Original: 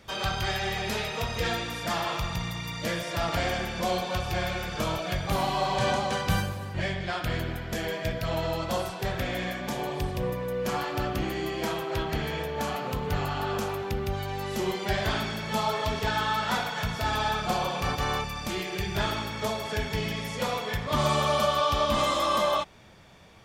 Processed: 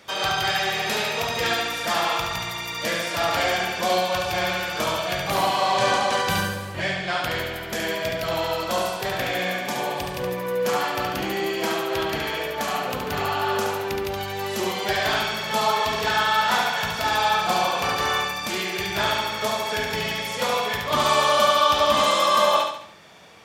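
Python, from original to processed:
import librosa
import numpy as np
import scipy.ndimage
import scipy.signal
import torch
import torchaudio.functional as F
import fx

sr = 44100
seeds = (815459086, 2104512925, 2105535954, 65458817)

y = fx.highpass(x, sr, hz=420.0, slope=6)
y = fx.echo_feedback(y, sr, ms=71, feedback_pct=44, wet_db=-4.5)
y = y * 10.0 ** (6.0 / 20.0)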